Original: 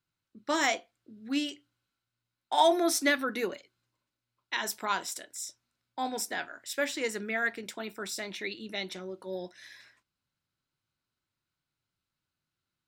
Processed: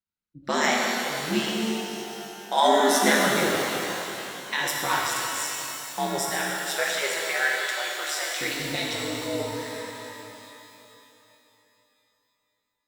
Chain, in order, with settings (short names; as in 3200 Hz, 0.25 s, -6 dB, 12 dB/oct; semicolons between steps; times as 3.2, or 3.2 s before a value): 6.29–8.39 HPF 540 Hz 24 dB/oct; spectral noise reduction 18 dB; in parallel at -1 dB: compressor, threshold -37 dBFS, peak gain reduction 17.5 dB; on the sum: ring modulator 72 Hz; shimmer reverb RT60 3.2 s, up +12 st, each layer -8 dB, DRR -3 dB; gain +3 dB